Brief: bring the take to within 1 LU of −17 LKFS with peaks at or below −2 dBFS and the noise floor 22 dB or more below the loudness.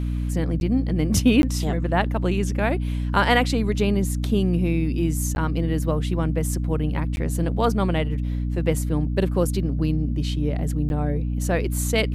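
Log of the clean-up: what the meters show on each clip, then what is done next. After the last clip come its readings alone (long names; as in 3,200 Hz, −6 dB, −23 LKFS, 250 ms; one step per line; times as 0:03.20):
number of dropouts 5; longest dropout 11 ms; mains hum 60 Hz; hum harmonics up to 300 Hz; level of the hum −22 dBFS; integrated loudness −23.0 LKFS; sample peak −4.5 dBFS; target loudness −17.0 LKFS
→ repair the gap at 0:00.60/0:01.42/0:05.35/0:07.16/0:10.89, 11 ms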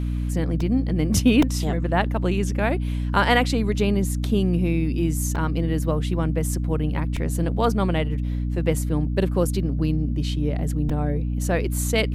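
number of dropouts 0; mains hum 60 Hz; hum harmonics up to 300 Hz; level of the hum −22 dBFS
→ hum removal 60 Hz, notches 5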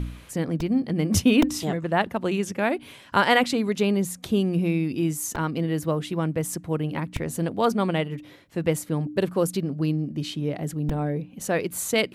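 mains hum none found; integrated loudness −25.5 LKFS; sample peak −6.0 dBFS; target loudness −17.0 LKFS
→ level +8.5 dB
brickwall limiter −2 dBFS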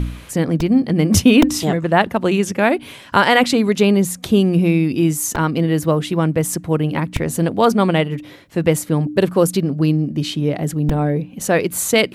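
integrated loudness −17.0 LKFS; sample peak −2.0 dBFS; background noise floor −39 dBFS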